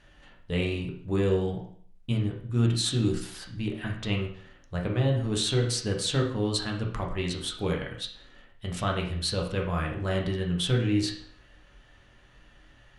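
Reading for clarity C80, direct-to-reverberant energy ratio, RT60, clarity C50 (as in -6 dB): 10.5 dB, -1.0 dB, 0.55 s, 6.5 dB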